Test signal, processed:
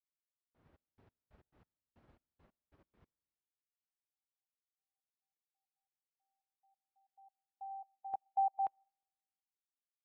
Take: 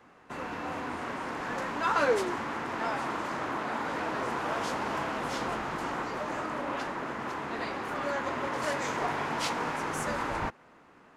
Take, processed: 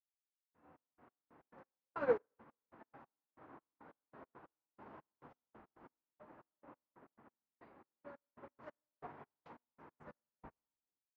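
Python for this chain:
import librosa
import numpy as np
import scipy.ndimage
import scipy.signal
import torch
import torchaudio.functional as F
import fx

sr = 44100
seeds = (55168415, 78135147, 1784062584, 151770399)

y = fx.fade_in_head(x, sr, length_s=0.77)
y = scipy.signal.sosfilt(scipy.signal.butter(2, 44.0, 'highpass', fs=sr, output='sos'), y)
y = fx.high_shelf(y, sr, hz=3500.0, db=-11.5)
y = fx.step_gate(y, sr, bpm=138, pattern='.x...xx..x..x', floor_db=-60.0, edge_ms=4.5)
y = fx.spacing_loss(y, sr, db_at_10k=29)
y = fx.rev_plate(y, sr, seeds[0], rt60_s=1.6, hf_ratio=0.8, predelay_ms=0, drr_db=15.0)
y = fx.upward_expand(y, sr, threshold_db=-51.0, expansion=2.5)
y = y * 10.0 ** (-2.5 / 20.0)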